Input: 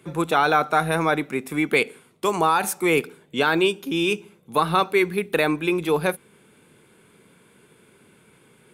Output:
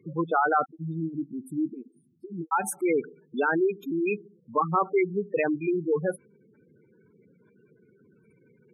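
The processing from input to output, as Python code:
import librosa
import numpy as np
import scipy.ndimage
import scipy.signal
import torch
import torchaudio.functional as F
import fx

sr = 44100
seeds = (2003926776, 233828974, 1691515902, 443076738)

y = fx.spec_gate(x, sr, threshold_db=-10, keep='strong')
y = fx.cheby1_bandstop(y, sr, low_hz=330.0, high_hz=4500.0, order=5, at=(0.64, 2.51), fade=0.02)
y = y * 10.0 ** (-3.0 / 20.0)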